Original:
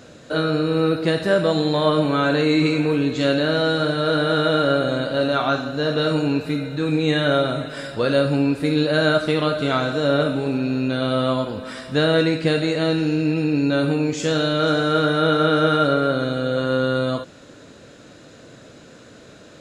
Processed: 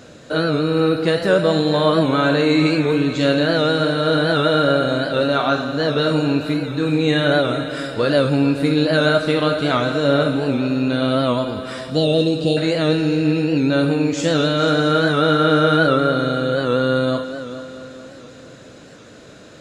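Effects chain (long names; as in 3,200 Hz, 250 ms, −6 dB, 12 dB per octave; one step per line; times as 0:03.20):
0:11.90–0:12.57: elliptic band-stop filter 780–2,900 Hz
on a send: echo machine with several playback heads 220 ms, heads first and second, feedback 53%, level −16 dB
on the sum: wow of a warped record 78 rpm, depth 100 cents
level +2 dB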